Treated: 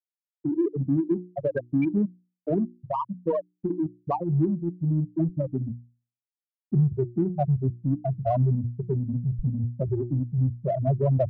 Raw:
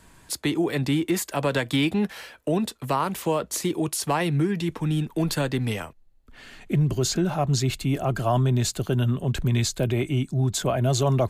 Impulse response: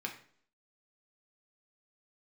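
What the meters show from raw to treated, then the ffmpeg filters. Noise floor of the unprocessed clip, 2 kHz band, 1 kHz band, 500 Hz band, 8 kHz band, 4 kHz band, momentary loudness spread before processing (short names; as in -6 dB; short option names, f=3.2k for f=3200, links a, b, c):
-54 dBFS, under -15 dB, -4.5 dB, -2.0 dB, under -40 dB, under -35 dB, 5 LU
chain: -filter_complex "[0:a]afftfilt=real='re*gte(hypot(re,im),0.398)':imag='im*gte(hypot(re,im),0.398)':win_size=1024:overlap=0.75,bandreject=f=60:t=h:w=6,bandreject=f=120:t=h:w=6,bandreject=f=180:t=h:w=6,bandreject=f=240:t=h:w=6,bandreject=f=300:t=h:w=6,bandreject=f=360:t=h:w=6,crystalizer=i=2.5:c=0,asplit=2[a][b];[b]asoftclip=type=tanh:threshold=-29dB,volume=-12dB[c];[a][c]amix=inputs=2:normalize=0"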